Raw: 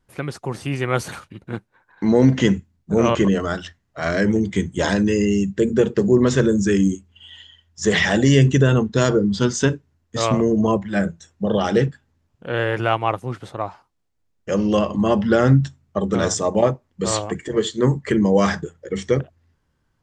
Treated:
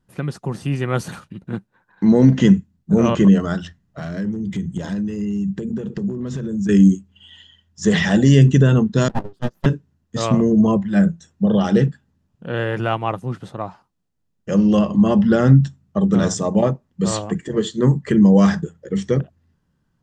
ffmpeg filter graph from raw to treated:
ffmpeg -i in.wav -filter_complex "[0:a]asettb=1/sr,asplit=3[link_01][link_02][link_03];[link_01]atrim=end=3.624[link_04];[link_02]atrim=start=3.62:end=6.69,asetpts=PTS-STARTPTS,afade=type=in:duration=0.004:curve=qsin,afade=type=out:start_time=3.066:duration=0.004:curve=qsin,lowshelf=frequency=250:gain=6,acompressor=threshold=-25dB:ratio=8:attack=3.2:release=140:knee=1:detection=peak,asoftclip=type=hard:threshold=-21.5dB[link_05];[link_03]atrim=start=6.686[link_06];[link_04][link_05]acrossfade=duration=0.004:curve1=hsin:curve2=qsin[link_07];[link_07][link_06]acrossfade=duration=0.004:curve1=qsin:curve2=hsin,asettb=1/sr,asplit=3[link_08][link_09][link_10];[link_08]atrim=end=9.084[link_11];[link_09]atrim=start=9.08:end=9.66,asetpts=PTS-STARTPTS,afade=type=in:duration=0.004:curve=qsin,afade=type=out:start_time=0.576:duration=0.004:curve=qsin,agate=range=-28dB:threshold=-17dB:ratio=16:release=100:detection=peak,lowpass=frequency=3000:poles=1,aeval=exprs='abs(val(0))':channel_layout=same[link_12];[link_10]atrim=start=9.656[link_13];[link_11][link_12]acrossfade=duration=0.004:curve1=hsin:curve2=qsin[link_14];[link_14][link_13]acrossfade=duration=0.004:curve1=qsin:curve2=hsin,equalizer=frequency=180:width_type=o:width=0.93:gain=11,bandreject=frequency=2200:width=12,volume=-2.5dB" out.wav

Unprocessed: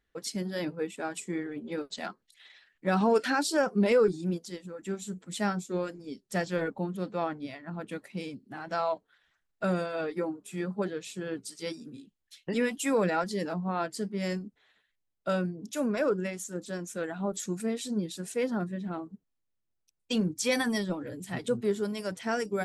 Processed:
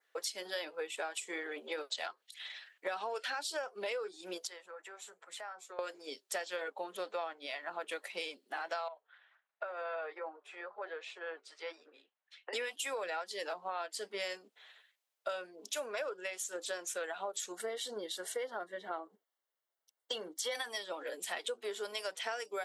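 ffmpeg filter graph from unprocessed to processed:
ffmpeg -i in.wav -filter_complex "[0:a]asettb=1/sr,asplit=3[link_01][link_02][link_03];[link_01]atrim=end=4.474[link_04];[link_02]atrim=start=4.47:end=5.79,asetpts=PTS-STARTPTS,afade=type=in:duration=0.004:curve=qsin,afade=type=out:start_time=1.316:duration=0.004:curve=qsin,acrossover=split=580 2000:gain=0.158 1 0.2[link_05][link_06][link_07];[link_05][link_06][link_07]amix=inputs=3:normalize=0,acompressor=threshold=-48dB:ratio=6:attack=3.2:release=140:knee=1:detection=peak[link_08];[link_03]atrim=start=5.786[link_09];[link_04][link_08]acrossfade=duration=0.004:curve1=hsin:curve2=qsin[link_10];[link_10][link_09]acrossfade=duration=0.004:curve1=qsin:curve2=hsin,asettb=1/sr,asplit=3[link_11][link_12][link_13];[link_11]atrim=end=8.884[link_14];[link_12]atrim=start=8.88:end=12.53,asetpts=PTS-STARTPTS,afade=type=in:duration=0.004:curve=qsin,afade=type=out:start_time=3.646:duration=0.004:curve=qsin,acompressor=threshold=-35dB:ratio=6:attack=3.2:release=140:knee=1:detection=peak,highpass=550,lowpass=2000[link_15];[link_13]atrim=start=12.526[link_16];[link_14][link_15]acrossfade=duration=0.004:curve1=hsin:curve2=qsin[link_17];[link_17][link_16]acrossfade=duration=0.004:curve1=qsin:curve2=hsin,asettb=1/sr,asplit=3[link_18][link_19][link_20];[link_18]atrim=end=17.524[link_21];[link_19]atrim=start=17.52:end=20.55,asetpts=PTS-STARTPTS,afade=type=in:duration=0.004:curve=qsin,afade=type=out:start_time=3.026:duration=0.004:curve=qsin,asuperstop=centerf=2500:order=12:qfactor=5.7,equalizer=frequency=6800:width_type=o:width=2.2:gain=-8[link_22];[link_20]atrim=start=20.546[link_23];[link_21][link_22]acrossfade=duration=0.004:curve1=hsin:curve2=qsin[link_24];[link_24][link_23]acrossfade=duration=0.004:curve1=qsin:curve2=hsin,highpass=frequency=510:width=0.5412,highpass=frequency=510:width=1.3066,adynamicequalizer=threshold=0.002:dfrequency=3200:dqfactor=1.8:tfrequency=3200:tqfactor=1.8:attack=5:release=100:ratio=0.375:range=3.5:mode=boostabove:tftype=bell,acompressor=threshold=-42dB:ratio=10,volume=6.5dB" out.wav

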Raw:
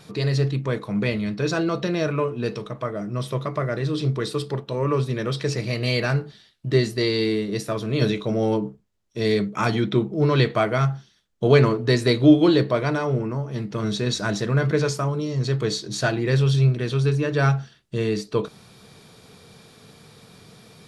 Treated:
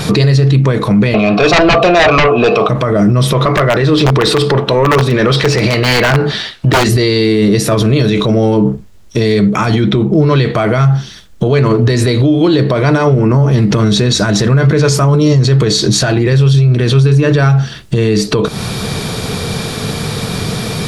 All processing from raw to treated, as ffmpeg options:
ffmpeg -i in.wav -filter_complex "[0:a]asettb=1/sr,asplit=3[link_01][link_02][link_03];[link_01]atrim=end=1.144[link_04];[link_02]atrim=start=1.14:end=2.69,asetpts=PTS-STARTPTS,afade=type=in:duration=0.004:curve=qsin,afade=type=out:start_time=1.546:duration=0.004:curve=qsin,asplit=3[link_05][link_06][link_07];[link_05]bandpass=frequency=730:width_type=q:width=8,volume=0dB[link_08];[link_06]bandpass=frequency=1090:width_type=q:width=8,volume=-6dB[link_09];[link_07]bandpass=frequency=2440:width_type=q:width=8,volume=-9dB[link_10];[link_08][link_09][link_10]amix=inputs=3:normalize=0,aeval=exprs='0.119*sin(PI/2*7.08*val(0)/0.119)':channel_layout=same[link_11];[link_03]atrim=start=2.686[link_12];[link_04][link_11]acrossfade=duration=0.004:curve1=hsin:curve2=qsin[link_13];[link_13][link_12]acrossfade=duration=0.004:curve1=qsin:curve2=hsin,asettb=1/sr,asplit=3[link_14][link_15][link_16];[link_14]atrim=end=3.334[link_17];[link_15]atrim=start=3.33:end=6.89,asetpts=PTS-STARTPTS,afade=type=in:duration=0.004:curve=qsin,afade=type=out:start_time=3.556:duration=0.004:curve=qsin,aeval=exprs='(mod(5.31*val(0)+1,2)-1)/5.31':channel_layout=same,acompressor=threshold=-45dB:ratio=1.5:attack=3.2:release=140:knee=1:detection=peak,asplit=2[link_18][link_19];[link_19]highpass=frequency=720:poles=1,volume=14dB,asoftclip=type=tanh:threshold=-21.5dB[link_20];[link_18][link_20]amix=inputs=2:normalize=0,lowpass=frequency=2200:poles=1,volume=-6dB[link_21];[link_16]atrim=start=6.886[link_22];[link_17][link_21]acrossfade=duration=0.004:curve1=hsin:curve2=qsin[link_23];[link_23][link_22]acrossfade=duration=0.004:curve1=qsin:curve2=hsin,lowshelf=frequency=97:gain=8.5,acompressor=threshold=-28dB:ratio=12,alimiter=level_in=30.5dB:limit=-1dB:release=50:level=0:latency=1,volume=-2dB" out.wav

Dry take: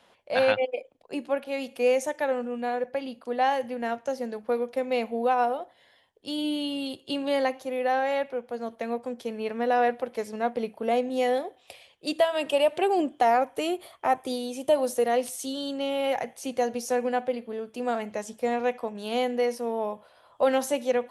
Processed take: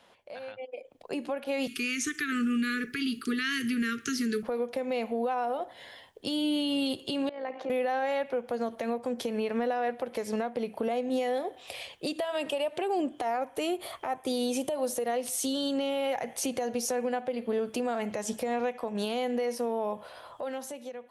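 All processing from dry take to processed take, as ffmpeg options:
ffmpeg -i in.wav -filter_complex "[0:a]asettb=1/sr,asplit=3[link_01][link_02][link_03];[link_01]atrim=end=1.674[link_04];[link_02]atrim=start=1.67:end=4.43,asetpts=PTS-STARTPTS,afade=type=in:duration=0.004:curve=qsin,afade=type=out:start_time=2.756:duration=0.004:curve=qsin,acrossover=split=6500[link_05][link_06];[link_06]acompressor=threshold=-58dB:ratio=4:attack=1:release=60[link_07];[link_05][link_07]amix=inputs=2:normalize=0,asuperstop=centerf=720:order=20:qfactor=0.96,highshelf=frequency=3700:gain=8[link_08];[link_03]atrim=start=4.426[link_09];[link_04][link_08]acrossfade=duration=0.004:curve1=hsin:curve2=qsin[link_10];[link_10][link_09]acrossfade=duration=0.004:curve1=qsin:curve2=hsin,asettb=1/sr,asplit=3[link_11][link_12][link_13];[link_11]atrim=end=7.294[link_14];[link_12]atrim=start=7.29:end=7.7,asetpts=PTS-STARTPTS,afade=type=in:duration=0.004:curve=qsin,afade=type=out:start_time=0.406:duration=0.004:curve=qsin,acompressor=threshold=-41dB:ratio=5:attack=3.2:release=140:knee=1:detection=peak,tremolo=f=56:d=0.462,highpass=260,lowpass=2300[link_15];[link_13]atrim=start=7.696[link_16];[link_14][link_15]acrossfade=duration=0.004:curve1=hsin:curve2=qsin[link_17];[link_17][link_16]acrossfade=duration=0.004:curve1=qsin:curve2=hsin,acompressor=threshold=-36dB:ratio=12,alimiter=level_in=9.5dB:limit=-24dB:level=0:latency=1:release=100,volume=-9.5dB,dynaudnorm=framelen=180:gausssize=11:maxgain=12dB" out.wav

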